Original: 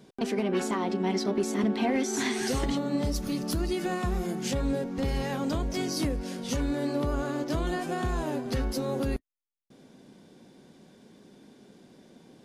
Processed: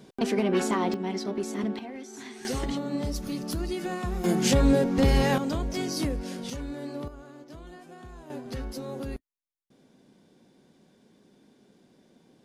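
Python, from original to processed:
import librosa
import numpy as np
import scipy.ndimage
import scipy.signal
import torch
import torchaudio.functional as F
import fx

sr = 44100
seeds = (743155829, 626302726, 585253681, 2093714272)

y = fx.gain(x, sr, db=fx.steps((0.0, 3.0), (0.94, -3.5), (1.79, -13.5), (2.45, -2.0), (4.24, 8.0), (5.38, 0.0), (6.5, -7.0), (7.08, -16.0), (8.3, -6.0)))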